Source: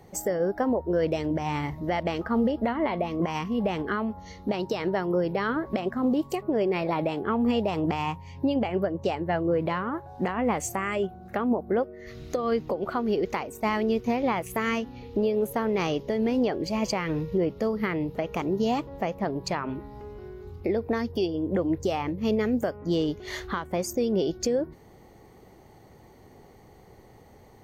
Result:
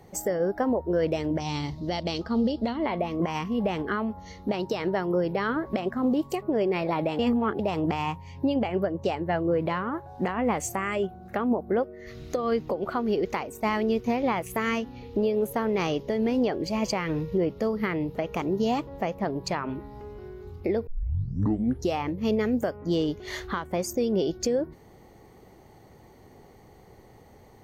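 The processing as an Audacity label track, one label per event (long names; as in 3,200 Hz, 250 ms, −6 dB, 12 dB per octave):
1.400000	2.860000	drawn EQ curve 260 Hz 0 dB, 1,900 Hz −8 dB, 4,400 Hz +13 dB, 14,000 Hz −10 dB
7.190000	7.590000	reverse
20.870000	20.870000	tape start 1.06 s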